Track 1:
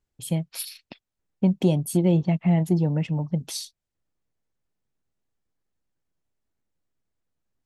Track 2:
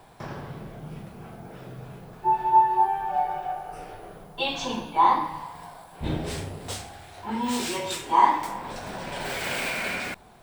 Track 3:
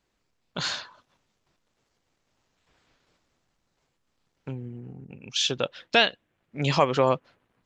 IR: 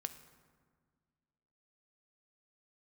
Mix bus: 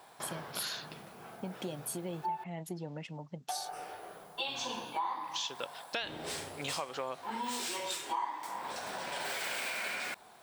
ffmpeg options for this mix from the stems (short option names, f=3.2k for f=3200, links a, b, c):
-filter_complex "[0:a]acompressor=threshold=-26dB:ratio=1.5,volume=-3dB[a];[1:a]volume=0.5dB,asplit=3[b][c][d];[b]atrim=end=2.44,asetpts=PTS-STARTPTS,afade=t=out:st=2.436:d=0.004:c=hsin[e];[c]atrim=start=2.44:end=3.49,asetpts=PTS-STARTPTS,volume=0[f];[d]atrim=start=3.49,asetpts=PTS-STARTPTS,afade=t=in:d=0.004:c=hsin[g];[e][f][g]concat=n=3:v=0:a=1[h];[2:a]volume=-6.5dB,asplit=2[i][j];[j]volume=-6dB[k];[3:a]atrim=start_sample=2205[l];[k][l]afir=irnorm=-1:irlink=0[m];[a][h][i][m]amix=inputs=4:normalize=0,highpass=f=910:p=1,equalizer=f=2.4k:w=1.5:g=-2.5,acompressor=threshold=-34dB:ratio=5"